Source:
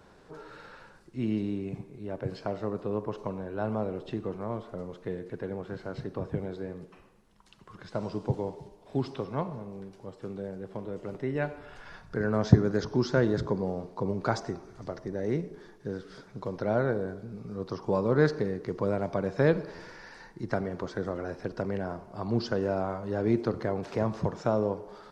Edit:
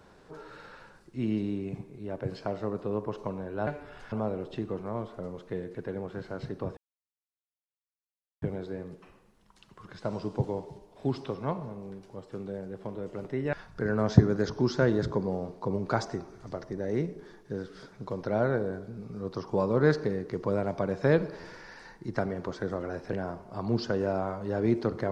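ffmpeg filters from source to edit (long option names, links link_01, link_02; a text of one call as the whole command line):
ffmpeg -i in.wav -filter_complex "[0:a]asplit=6[link_01][link_02][link_03][link_04][link_05][link_06];[link_01]atrim=end=3.672[link_07];[link_02]atrim=start=11.428:end=11.882[link_08];[link_03]atrim=start=3.668:end=6.32,asetpts=PTS-STARTPTS,afade=type=out:start_time=2.648:duration=0.004:curve=hsin,apad=pad_dur=1.65[link_09];[link_04]atrim=start=6.32:end=11.432,asetpts=PTS-STARTPTS,afade=type=in:duration=0.004:curve=hsin[link_10];[link_05]atrim=start=11.878:end=21.482[link_11];[link_06]atrim=start=21.748[link_12];[link_07][link_08]acrossfade=duration=0.004:curve1=hsin:curve2=hsin[link_13];[link_09][link_10]concat=n=2:v=0:a=1[link_14];[link_13][link_14]acrossfade=duration=0.004:curve1=hsin:curve2=hsin[link_15];[link_15][link_11]acrossfade=duration=0.004:curve1=hsin:curve2=hsin[link_16];[link_16][link_12]acrossfade=duration=0.004:curve1=hsin:curve2=hsin" out.wav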